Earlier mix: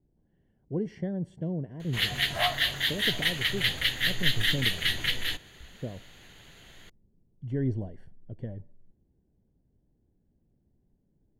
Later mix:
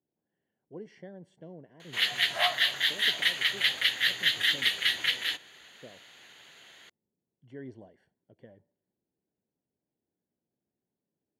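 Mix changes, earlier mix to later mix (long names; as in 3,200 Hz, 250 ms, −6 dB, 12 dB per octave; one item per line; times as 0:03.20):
speech −5.5 dB
master: add meter weighting curve A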